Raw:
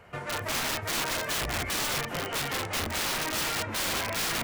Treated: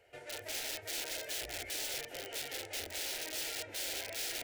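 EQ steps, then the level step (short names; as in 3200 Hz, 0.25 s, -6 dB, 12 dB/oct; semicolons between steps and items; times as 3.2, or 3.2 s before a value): low shelf 250 Hz -10 dB; fixed phaser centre 460 Hz, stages 4; -7.0 dB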